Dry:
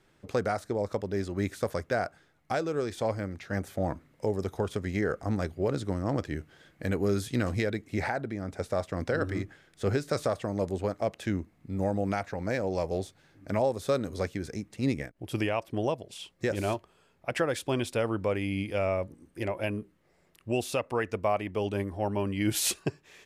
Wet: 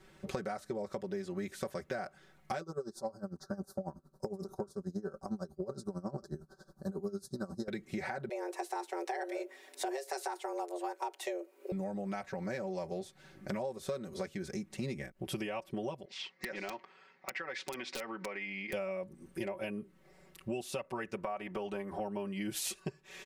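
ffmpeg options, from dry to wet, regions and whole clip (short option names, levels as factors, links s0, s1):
-filter_complex "[0:a]asettb=1/sr,asplit=3[s0][s1][s2];[s0]atrim=end=2.614[s3];[s1]atrim=start=2.61:end=7.68,asetpts=PTS-STARTPTS,afade=t=in:d=0.004:c=qsin,afade=t=out:st=5.066:d=0.004:c=qsin,asuperstop=centerf=2500:order=8:qfactor=0.91,aecho=1:1:5.1:0.37,atrim=end_sample=223587,aeval=exprs='val(0)*pow(10,-20*(0.5-0.5*cos(2*PI*11*n/s))/20)':c=same[s4];[s2]atrim=start=7.676[s5];[s3][s4]acrossfade=d=0.004:c1=hsin:c2=qsin[s6];[s6][s5]acrossfade=d=0.004:c1=qsin:c2=hsin,asettb=1/sr,asplit=3[s7][s8][s9];[s7]atrim=end=8.294[s10];[s8]atrim=start=8.29:end=11.72,asetpts=PTS-STARTPTS,afade=t=in:d=0.004:c=qsin,afade=t=out:st=3.426:d=0.004:c=qsin,afreqshift=260,highshelf=f=7800:g=10.5[s11];[s9]atrim=start=11.716[s12];[s10][s11]acrossfade=d=0.004:c1=hsin:c2=qsin[s13];[s13][s12]acrossfade=d=0.004:c1=qsin:c2=hsin,asettb=1/sr,asplit=3[s14][s15][s16];[s14]atrim=end=16.054[s17];[s15]atrim=start=16.05:end=18.73,asetpts=PTS-STARTPTS,afade=t=in:d=0.004:c=qsin,afade=t=out:st=2.676:d=0.004:c=qsin,highpass=340,equalizer=f=370:t=q:w=4:g=-6,equalizer=f=600:t=q:w=4:g=-7,equalizer=f=2000:t=q:w=4:g=10,equalizer=f=3300:t=q:w=4:g=-5,lowpass=f=5200:w=0.5412,lowpass=f=5200:w=1.3066,acompressor=threshold=0.01:ratio=4:attack=3.2:release=140:knee=1:detection=peak,aeval=exprs='(mod(31.6*val(0)+1,2)-1)/31.6':c=same[s18];[s16]atrim=start=18.726[s19];[s17][s18]acrossfade=d=0.004:c1=hsin:c2=qsin[s20];[s20][s19]acrossfade=d=0.004:c1=qsin:c2=hsin,asettb=1/sr,asplit=3[s21][s22][s23];[s21]atrim=end=21.174[s24];[s22]atrim=start=21.17:end=22,asetpts=PTS-STARTPTS,afade=t=in:d=0.004:c=qsin,afade=t=out:st=0.826:d=0.004:c=qsin,acompressor=threshold=0.02:ratio=2.5:attack=3.2:release=140:knee=1:detection=peak,equalizer=f=1100:t=o:w=2.1:g=8.5[s25];[s23]atrim=start=21.996[s26];[s24][s25]acrossfade=d=0.004:c1=hsin:c2=qsin[s27];[s27][s26]acrossfade=d=0.004:c1=qsin:c2=hsin,aecho=1:1:5.3:0.98,acompressor=threshold=0.0126:ratio=6,volume=1.26"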